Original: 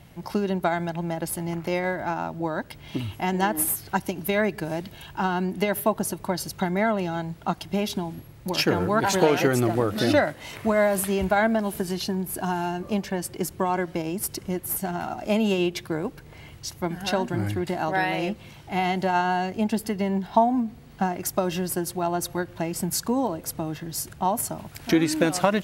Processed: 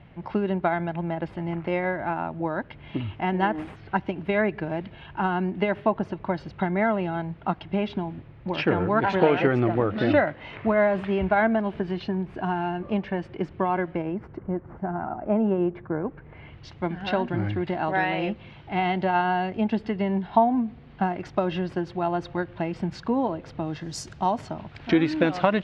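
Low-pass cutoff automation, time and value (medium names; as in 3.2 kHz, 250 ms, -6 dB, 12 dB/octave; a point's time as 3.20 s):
low-pass 24 dB/octave
13.79 s 2.9 kHz
14.44 s 1.5 kHz
15.89 s 1.5 kHz
16.67 s 3.4 kHz
23.59 s 3.4 kHz
23.94 s 7.2 kHz
24.53 s 3.7 kHz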